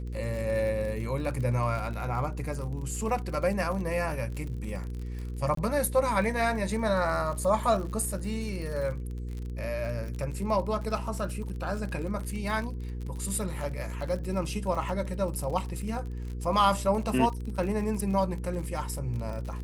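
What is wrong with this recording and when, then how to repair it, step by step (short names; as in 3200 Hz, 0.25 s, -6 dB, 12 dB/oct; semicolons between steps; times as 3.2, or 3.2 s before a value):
crackle 47/s -35 dBFS
hum 60 Hz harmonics 8 -35 dBFS
5.55–5.57 gap 23 ms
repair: de-click; de-hum 60 Hz, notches 8; interpolate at 5.55, 23 ms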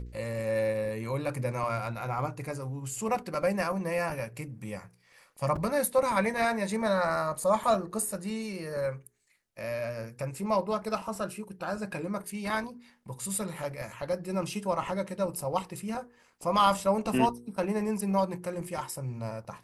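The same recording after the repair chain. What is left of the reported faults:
none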